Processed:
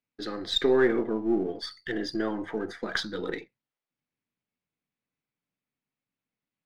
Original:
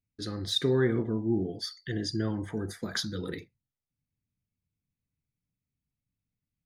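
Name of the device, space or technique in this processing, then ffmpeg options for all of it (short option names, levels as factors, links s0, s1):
crystal radio: -af "highpass=340,lowpass=3100,aeval=exprs='if(lt(val(0),0),0.708*val(0),val(0))':c=same,volume=2.51"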